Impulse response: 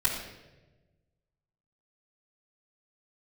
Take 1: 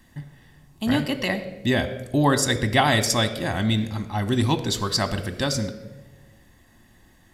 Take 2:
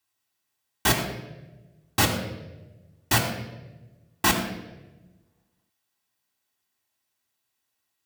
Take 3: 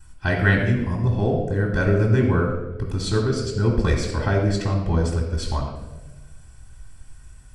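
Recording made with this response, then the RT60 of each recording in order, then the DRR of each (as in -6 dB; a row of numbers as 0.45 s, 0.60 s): 3; 1.2 s, 1.1 s, 1.1 s; 7.5 dB, -1.5 dB, -11.5 dB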